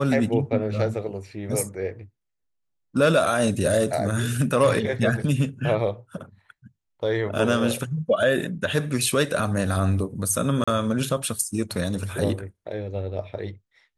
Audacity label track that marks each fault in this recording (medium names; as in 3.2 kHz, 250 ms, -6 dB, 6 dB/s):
10.640000	10.680000	dropout 35 ms